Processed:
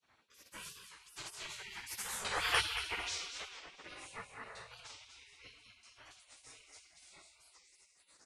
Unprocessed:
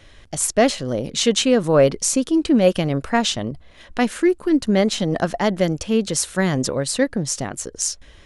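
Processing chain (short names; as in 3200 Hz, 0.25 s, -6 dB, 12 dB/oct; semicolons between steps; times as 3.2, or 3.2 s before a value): Doppler pass-by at 2.56, 27 m/s, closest 1.6 m; band shelf 1300 Hz +15 dB; in parallel at +2 dB: compressor, threshold -33 dBFS, peak gain reduction 17.5 dB; on the sum: resonator 110 Hz, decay 1.1 s, harmonics all, mix 60%; on a send: feedback echo 0.226 s, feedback 39%, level -9 dB; on the sum: shoebox room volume 190 m³, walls mixed, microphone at 3.2 m; spectral gate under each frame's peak -25 dB weak; record warp 45 rpm, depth 160 cents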